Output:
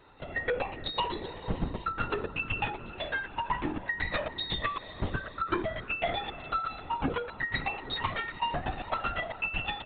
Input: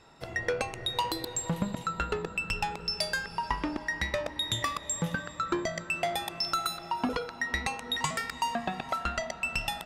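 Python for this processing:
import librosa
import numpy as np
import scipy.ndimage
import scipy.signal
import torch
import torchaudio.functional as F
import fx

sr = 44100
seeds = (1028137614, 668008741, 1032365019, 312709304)

y = fx.lpc_vocoder(x, sr, seeds[0], excitation='whisper', order=16)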